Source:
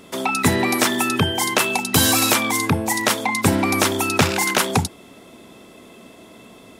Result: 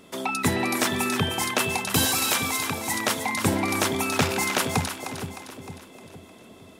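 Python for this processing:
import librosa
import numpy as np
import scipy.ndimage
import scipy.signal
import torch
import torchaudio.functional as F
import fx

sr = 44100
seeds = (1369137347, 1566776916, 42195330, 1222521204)

p1 = fx.low_shelf(x, sr, hz=440.0, db=-9.5, at=(2.05, 2.94))
p2 = p1 + fx.echo_split(p1, sr, split_hz=640.0, low_ms=461, high_ms=307, feedback_pct=52, wet_db=-8.5, dry=0)
y = F.gain(torch.from_numpy(p2), -6.0).numpy()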